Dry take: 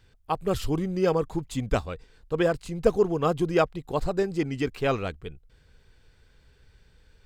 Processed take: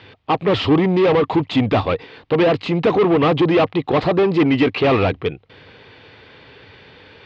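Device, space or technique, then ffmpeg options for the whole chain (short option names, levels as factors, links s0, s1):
overdrive pedal into a guitar cabinet: -filter_complex "[0:a]asplit=2[s0][s1];[s1]highpass=f=720:p=1,volume=44.7,asoftclip=type=tanh:threshold=0.422[s2];[s0][s2]amix=inputs=2:normalize=0,lowpass=f=3000:p=1,volume=0.501,highpass=95,equalizer=f=100:t=q:w=4:g=9,equalizer=f=290:t=q:w=4:g=5,equalizer=f=1500:t=q:w=4:g=-8,lowpass=f=3800:w=0.5412,lowpass=f=3800:w=1.3066"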